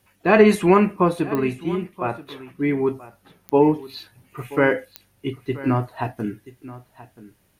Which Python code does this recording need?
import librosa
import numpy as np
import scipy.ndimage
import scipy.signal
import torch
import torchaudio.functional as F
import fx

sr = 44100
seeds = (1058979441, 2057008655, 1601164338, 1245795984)

y = fx.fix_declick_ar(x, sr, threshold=10.0)
y = fx.fix_echo_inverse(y, sr, delay_ms=980, level_db=-17.5)